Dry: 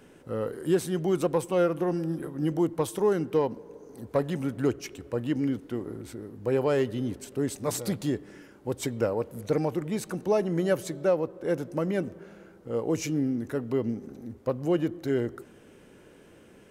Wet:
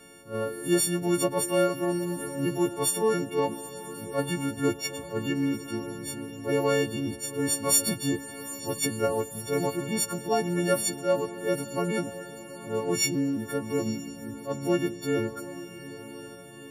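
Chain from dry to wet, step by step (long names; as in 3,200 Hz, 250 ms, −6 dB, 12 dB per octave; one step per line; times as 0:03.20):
every partial snapped to a pitch grid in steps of 4 semitones
feedback delay with all-pass diffusion 867 ms, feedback 54%, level −13.5 dB
level that may rise only so fast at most 210 dB per second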